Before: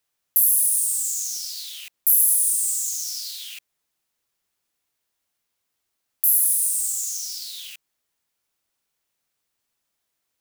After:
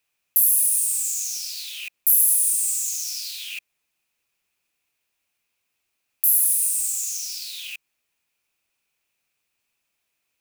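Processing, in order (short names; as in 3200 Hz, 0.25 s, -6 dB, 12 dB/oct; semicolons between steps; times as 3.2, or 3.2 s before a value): bell 2500 Hz +12.5 dB 0.31 oct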